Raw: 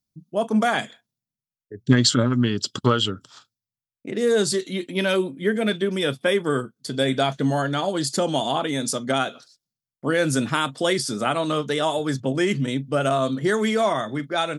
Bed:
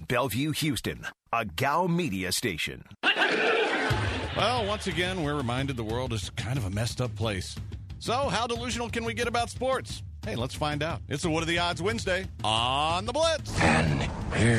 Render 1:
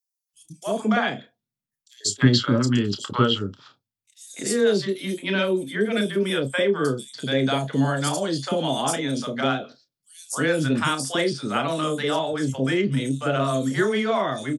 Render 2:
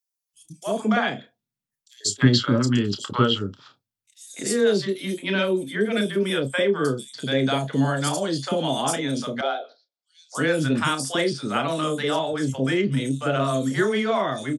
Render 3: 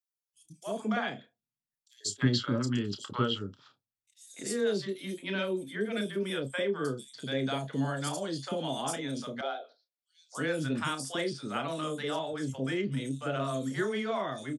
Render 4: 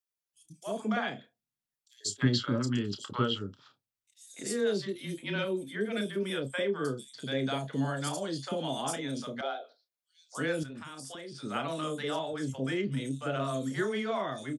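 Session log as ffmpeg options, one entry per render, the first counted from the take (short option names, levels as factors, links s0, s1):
-filter_complex "[0:a]asplit=2[s0][s1];[s1]adelay=30,volume=0.316[s2];[s0][s2]amix=inputs=2:normalize=0,acrossover=split=700|5000[s3][s4][s5];[s4]adelay=290[s6];[s3]adelay=340[s7];[s7][s6][s5]amix=inputs=3:normalize=0"
-filter_complex "[0:a]asettb=1/sr,asplit=3[s0][s1][s2];[s0]atrim=end=9.414[s3];[s1]atrim=start=9.41:end=10.35,asetpts=PTS-STARTPTS,afade=t=in:d=0.004:c=qsin,afade=t=out:st=0.936:d=0.004:c=qsin,highpass=f=460:w=0.5412,highpass=f=460:w=1.3066,equalizer=f=730:t=q:w=4:g=4,equalizer=f=1100:t=q:w=4:g=-9,equalizer=f=1800:t=q:w=4:g=-9,equalizer=f=2700:t=q:w=4:g=-10,lowpass=f=4600:w=0.5412,lowpass=f=4600:w=1.3066[s4];[s2]atrim=start=10.346[s5];[s3][s4]acrossfade=d=0.004:c1=hsin:c2=qsin[s6];[s6][s5]acrossfade=d=0.004:c1=qsin:c2=hsin"
-af "volume=0.335"
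-filter_complex "[0:a]asplit=3[s0][s1][s2];[s0]afade=t=out:st=4.92:d=0.02[s3];[s1]afreqshift=-22,afade=t=in:st=4.92:d=0.02,afade=t=out:st=5.44:d=0.02[s4];[s2]afade=t=in:st=5.44:d=0.02[s5];[s3][s4][s5]amix=inputs=3:normalize=0,asettb=1/sr,asplit=3[s6][s7][s8];[s6]atrim=end=10.634[s9];[s7]atrim=start=10.63:end=11.43,asetpts=PTS-STARTPTS,afade=t=in:d=0.004:c=qsin,afade=t=out:st=0.796:d=0.004:c=qsin,acompressor=threshold=0.0112:ratio=16:attack=3.2:release=140:knee=1:detection=peak[s10];[s8]atrim=start=11.426[s11];[s9][s10]acrossfade=d=0.004:c1=hsin:c2=qsin[s12];[s12][s11]acrossfade=d=0.004:c1=qsin:c2=hsin"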